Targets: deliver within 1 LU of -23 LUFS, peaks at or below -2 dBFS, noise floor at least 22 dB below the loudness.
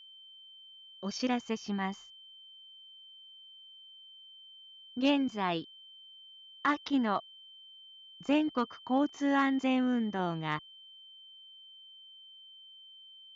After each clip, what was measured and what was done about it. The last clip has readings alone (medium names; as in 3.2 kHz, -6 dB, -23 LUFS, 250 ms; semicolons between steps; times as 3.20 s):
steady tone 3.1 kHz; tone level -51 dBFS; loudness -32.0 LUFS; peak level -19.0 dBFS; loudness target -23.0 LUFS
-> band-stop 3.1 kHz, Q 30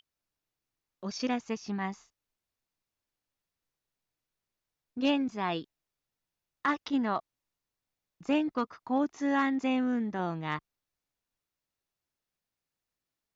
steady tone not found; loudness -31.5 LUFS; peak level -19.0 dBFS; loudness target -23.0 LUFS
-> trim +8.5 dB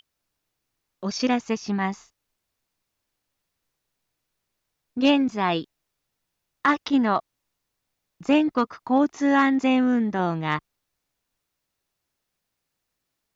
loudness -23.0 LUFS; peak level -10.5 dBFS; noise floor -81 dBFS